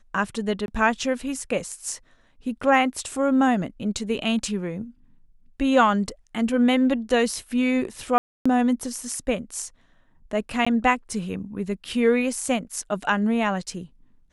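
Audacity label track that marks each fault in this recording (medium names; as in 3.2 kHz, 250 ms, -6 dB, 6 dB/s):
0.660000	0.680000	dropout 21 ms
8.180000	8.460000	dropout 275 ms
10.650000	10.660000	dropout 15 ms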